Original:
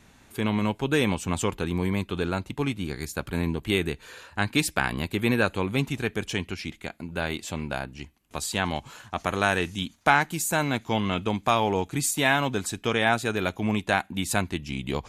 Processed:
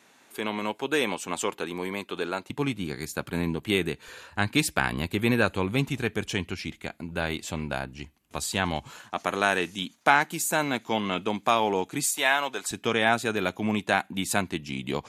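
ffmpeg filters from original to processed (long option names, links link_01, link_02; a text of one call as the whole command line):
ffmpeg -i in.wav -af "asetnsamples=nb_out_samples=441:pad=0,asendcmd='2.5 highpass f 120;4.08 highpass f 51;8.99 highpass f 210;12.04 highpass f 540;12.71 highpass f 140',highpass=340" out.wav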